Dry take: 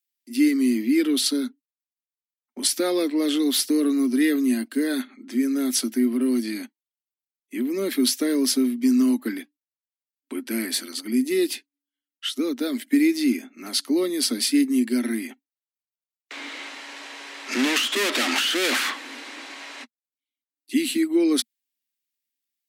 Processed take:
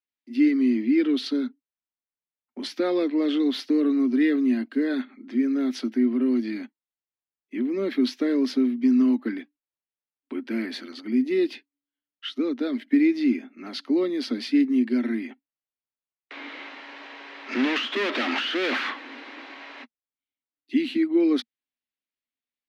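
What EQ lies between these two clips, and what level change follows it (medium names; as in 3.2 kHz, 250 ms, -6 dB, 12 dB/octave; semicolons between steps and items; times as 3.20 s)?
distance through air 280 m; 0.0 dB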